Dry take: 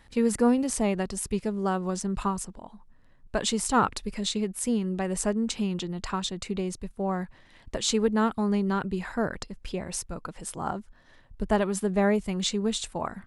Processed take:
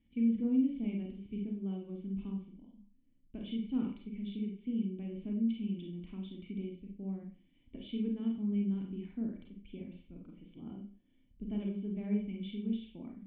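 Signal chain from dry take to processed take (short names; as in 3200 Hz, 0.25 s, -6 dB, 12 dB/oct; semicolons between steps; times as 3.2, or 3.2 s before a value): vocal tract filter i; Schroeder reverb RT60 0.39 s, combs from 31 ms, DRR 0 dB; gain -5 dB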